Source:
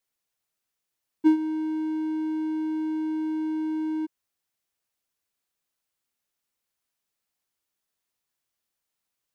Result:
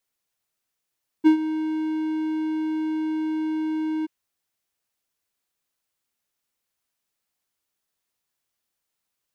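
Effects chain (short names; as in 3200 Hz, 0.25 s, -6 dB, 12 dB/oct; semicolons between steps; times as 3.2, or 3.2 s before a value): dynamic EQ 2600 Hz, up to +7 dB, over -54 dBFS, Q 0.87; gain +2 dB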